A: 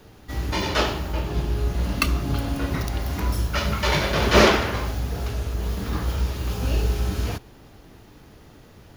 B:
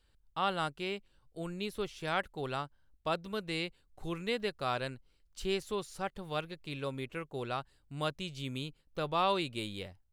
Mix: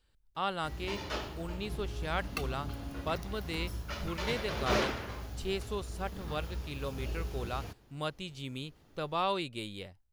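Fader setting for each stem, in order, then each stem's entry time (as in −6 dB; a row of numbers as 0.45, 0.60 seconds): −15.0, −1.5 decibels; 0.35, 0.00 seconds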